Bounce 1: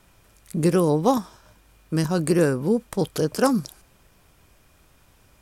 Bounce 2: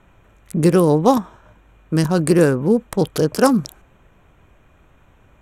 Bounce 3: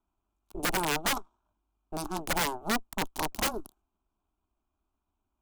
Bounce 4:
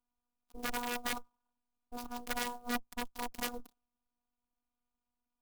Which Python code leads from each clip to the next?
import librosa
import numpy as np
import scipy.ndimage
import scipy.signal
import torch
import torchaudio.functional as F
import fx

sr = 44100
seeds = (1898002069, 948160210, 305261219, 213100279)

y1 = fx.wiener(x, sr, points=9)
y1 = y1 * librosa.db_to_amplitude(5.5)
y2 = fx.cheby_harmonics(y1, sr, harmonics=(3, 6), levels_db=(-9, -19), full_scale_db=-1.0)
y2 = fx.fixed_phaser(y2, sr, hz=510.0, stages=6)
y2 = (np.mod(10.0 ** (18.5 / 20.0) * y2 + 1.0, 2.0) - 1.0) / 10.0 ** (18.5 / 20.0)
y2 = y2 * librosa.db_to_amplitude(-2.5)
y3 = fx.robotise(y2, sr, hz=242.0)
y3 = fx.clock_jitter(y3, sr, seeds[0], jitter_ms=0.028)
y3 = y3 * librosa.db_to_amplitude(-5.5)